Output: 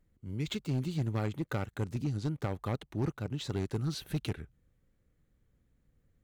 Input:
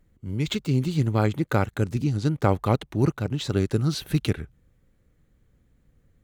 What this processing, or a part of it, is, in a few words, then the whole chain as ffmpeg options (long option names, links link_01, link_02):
limiter into clipper: -af "alimiter=limit=-11.5dB:level=0:latency=1:release=292,asoftclip=type=hard:threshold=-17.5dB,volume=-8.5dB"